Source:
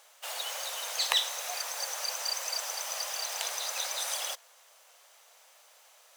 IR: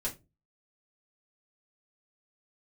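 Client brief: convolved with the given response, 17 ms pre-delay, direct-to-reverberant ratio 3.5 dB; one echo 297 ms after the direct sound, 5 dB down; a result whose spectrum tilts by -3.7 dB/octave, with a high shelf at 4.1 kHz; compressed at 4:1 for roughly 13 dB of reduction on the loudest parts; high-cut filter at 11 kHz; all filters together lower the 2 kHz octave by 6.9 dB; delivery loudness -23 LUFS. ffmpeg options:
-filter_complex "[0:a]lowpass=11000,equalizer=f=2000:t=o:g=-8,highshelf=f=4100:g=-4,acompressor=threshold=0.00794:ratio=4,aecho=1:1:297:0.562,asplit=2[s0][s1];[1:a]atrim=start_sample=2205,adelay=17[s2];[s1][s2]afir=irnorm=-1:irlink=0,volume=0.473[s3];[s0][s3]amix=inputs=2:normalize=0,volume=7.5"

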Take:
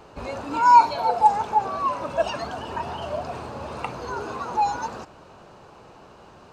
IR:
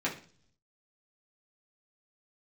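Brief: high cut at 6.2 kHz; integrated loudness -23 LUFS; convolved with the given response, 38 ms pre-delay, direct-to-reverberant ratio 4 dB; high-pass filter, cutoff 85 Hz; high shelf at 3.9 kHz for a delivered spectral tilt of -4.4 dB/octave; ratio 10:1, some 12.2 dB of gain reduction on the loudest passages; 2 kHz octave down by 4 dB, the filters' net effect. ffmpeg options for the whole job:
-filter_complex "[0:a]highpass=85,lowpass=6200,equalizer=f=2000:t=o:g=-4.5,highshelf=f=3900:g=-7.5,acompressor=threshold=0.0708:ratio=10,asplit=2[s0][s1];[1:a]atrim=start_sample=2205,adelay=38[s2];[s1][s2]afir=irnorm=-1:irlink=0,volume=0.266[s3];[s0][s3]amix=inputs=2:normalize=0,volume=2"

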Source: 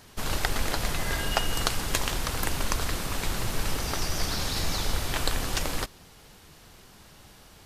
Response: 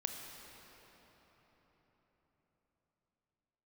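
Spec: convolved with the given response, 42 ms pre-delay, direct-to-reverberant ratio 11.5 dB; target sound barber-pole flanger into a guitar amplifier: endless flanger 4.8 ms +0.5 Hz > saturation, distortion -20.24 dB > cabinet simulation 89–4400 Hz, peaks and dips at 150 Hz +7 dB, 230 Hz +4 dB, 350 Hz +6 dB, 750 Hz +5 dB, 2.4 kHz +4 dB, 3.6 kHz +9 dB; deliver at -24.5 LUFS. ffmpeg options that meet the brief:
-filter_complex "[0:a]asplit=2[s0][s1];[1:a]atrim=start_sample=2205,adelay=42[s2];[s1][s2]afir=irnorm=-1:irlink=0,volume=0.251[s3];[s0][s3]amix=inputs=2:normalize=0,asplit=2[s4][s5];[s5]adelay=4.8,afreqshift=0.5[s6];[s4][s6]amix=inputs=2:normalize=1,asoftclip=threshold=0.106,highpass=89,equalizer=f=150:t=q:w=4:g=7,equalizer=f=230:t=q:w=4:g=4,equalizer=f=350:t=q:w=4:g=6,equalizer=f=750:t=q:w=4:g=5,equalizer=f=2400:t=q:w=4:g=4,equalizer=f=3600:t=q:w=4:g=9,lowpass=f=4400:w=0.5412,lowpass=f=4400:w=1.3066,volume=2.37"

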